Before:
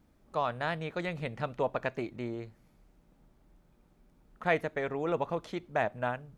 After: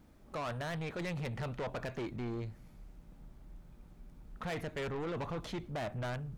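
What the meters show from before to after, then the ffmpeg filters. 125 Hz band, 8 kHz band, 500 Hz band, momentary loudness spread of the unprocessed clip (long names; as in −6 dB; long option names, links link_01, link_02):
+1.0 dB, can't be measured, −7.5 dB, 7 LU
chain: -af "asubboost=boost=2:cutoff=220,alimiter=level_in=1dB:limit=-24dB:level=0:latency=1:release=13,volume=-1dB,asoftclip=type=tanh:threshold=-39dB,volume=4.5dB"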